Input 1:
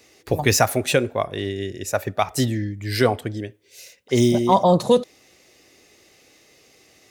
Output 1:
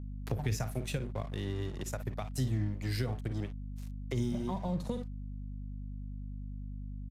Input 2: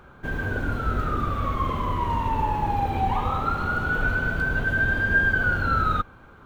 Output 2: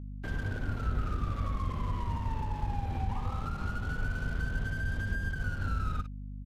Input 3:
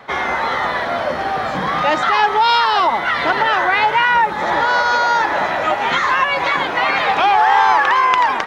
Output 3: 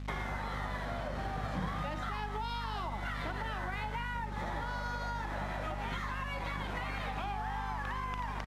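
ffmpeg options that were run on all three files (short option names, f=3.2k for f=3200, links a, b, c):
-filter_complex "[0:a]aecho=1:1:38|54:0.158|0.266,acompressor=threshold=-22dB:ratio=2,aeval=exprs='sgn(val(0))*max(abs(val(0))-0.0141,0)':c=same,acrossover=split=170[a][b];[b]acompressor=threshold=-39dB:ratio=4[c];[a][c]amix=inputs=2:normalize=0,aeval=exprs='val(0)+0.0126*(sin(2*PI*50*n/s)+sin(2*PI*2*50*n/s)/2+sin(2*PI*3*50*n/s)/3+sin(2*PI*4*50*n/s)/4+sin(2*PI*5*50*n/s)/5)':c=same,aresample=32000,aresample=44100,volume=-1.5dB"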